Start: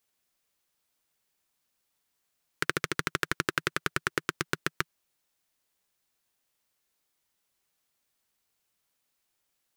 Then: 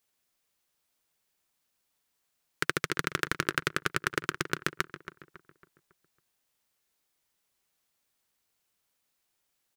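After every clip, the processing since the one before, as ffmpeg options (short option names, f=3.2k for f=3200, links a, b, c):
-filter_complex "[0:a]asplit=2[a][b];[b]adelay=276,lowpass=f=2.4k:p=1,volume=-12dB,asplit=2[c][d];[d]adelay=276,lowpass=f=2.4k:p=1,volume=0.45,asplit=2[e][f];[f]adelay=276,lowpass=f=2.4k:p=1,volume=0.45,asplit=2[g][h];[h]adelay=276,lowpass=f=2.4k:p=1,volume=0.45,asplit=2[i][j];[j]adelay=276,lowpass=f=2.4k:p=1,volume=0.45[k];[a][c][e][g][i][k]amix=inputs=6:normalize=0"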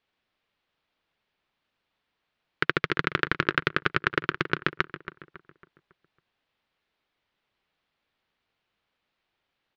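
-af "lowpass=f=3.7k:w=0.5412,lowpass=f=3.7k:w=1.3066,volume=5dB"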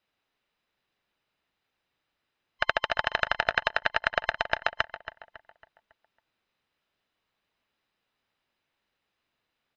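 -af "afftfilt=real='real(if(between(b,1,1008),(2*floor((b-1)/48)+1)*48-b,b),0)':imag='imag(if(between(b,1,1008),(2*floor((b-1)/48)+1)*48-b,b),0)*if(between(b,1,1008),-1,1)':win_size=2048:overlap=0.75,volume=-1dB"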